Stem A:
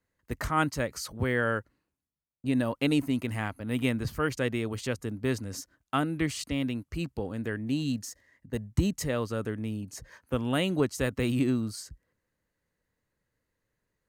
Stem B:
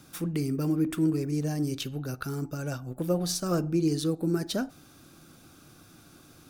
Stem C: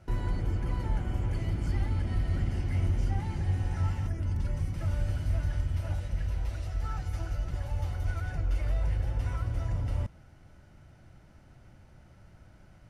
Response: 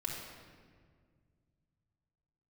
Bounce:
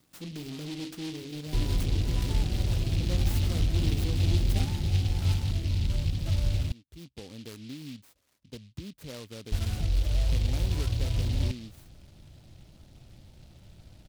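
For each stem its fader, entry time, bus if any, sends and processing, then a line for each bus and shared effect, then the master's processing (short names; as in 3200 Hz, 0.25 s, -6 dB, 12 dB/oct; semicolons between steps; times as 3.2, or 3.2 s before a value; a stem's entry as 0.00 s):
-7.0 dB, 0.00 s, no send, bell 12000 Hz -14.5 dB 2 oct; compressor 2.5:1, threshold -33 dBFS, peak gain reduction 10 dB; auto duck -16 dB, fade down 0.30 s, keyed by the second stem
-15.0 dB, 0.00 s, no send, de-hum 46.8 Hz, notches 37; sample leveller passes 2
-1.0 dB, 1.45 s, muted 6.72–9.52, no send, tilt shelf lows +4 dB, about 1300 Hz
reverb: off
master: noise-modulated delay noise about 3400 Hz, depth 0.17 ms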